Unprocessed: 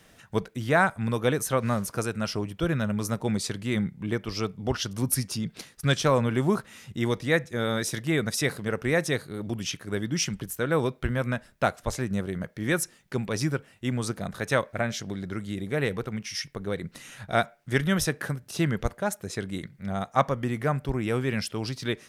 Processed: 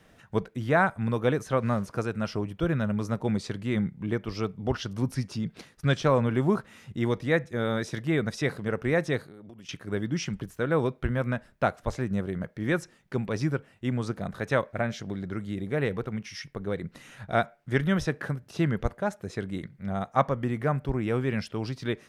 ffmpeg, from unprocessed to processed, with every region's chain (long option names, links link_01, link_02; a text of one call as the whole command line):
ffmpeg -i in.wav -filter_complex "[0:a]asettb=1/sr,asplit=3[link_01][link_02][link_03];[link_01]atrim=end=9.234[link_04];[link_02]atrim=start=9.23:end=9.69,asetpts=PTS-STARTPTS,afade=type=in:duration=0.004:curve=qsin,afade=type=out:start_time=0.456:duration=0.004:curve=qsin,highpass=frequency=170:poles=1,acompressor=threshold=-43dB:ratio=8:attack=3.2:release=140:knee=1:detection=peak[link_05];[link_03]atrim=start=9.686[link_06];[link_04][link_05]acrossfade=duration=0.004:curve1=hsin:curve2=qsin[link_07];[link_07][link_06]acrossfade=duration=0.004:curve1=qsin:curve2=hsin,acrossover=split=6900[link_08][link_09];[link_09]acompressor=threshold=-47dB:ratio=4:attack=1:release=60[link_10];[link_08][link_10]amix=inputs=2:normalize=0,highshelf=frequency=3100:gain=-10" out.wav